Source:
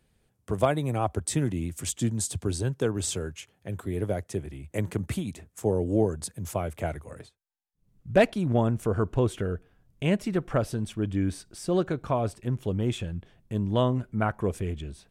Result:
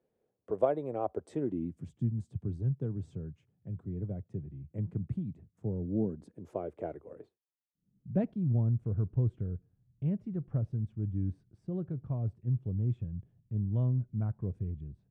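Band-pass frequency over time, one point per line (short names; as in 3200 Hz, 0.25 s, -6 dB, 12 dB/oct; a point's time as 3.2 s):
band-pass, Q 2
1.34 s 480 Hz
1.91 s 140 Hz
5.81 s 140 Hz
6.48 s 400 Hz
7.17 s 400 Hz
8.57 s 120 Hz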